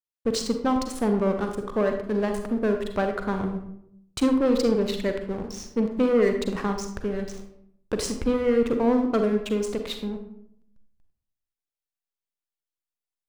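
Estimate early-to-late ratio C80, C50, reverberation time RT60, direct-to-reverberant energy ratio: 9.5 dB, 6.5 dB, 0.75 s, 5.0 dB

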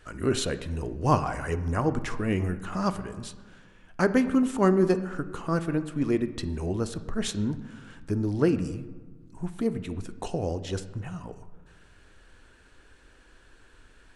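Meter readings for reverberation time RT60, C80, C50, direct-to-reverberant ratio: 1.3 s, 15.0 dB, 13.0 dB, 10.0 dB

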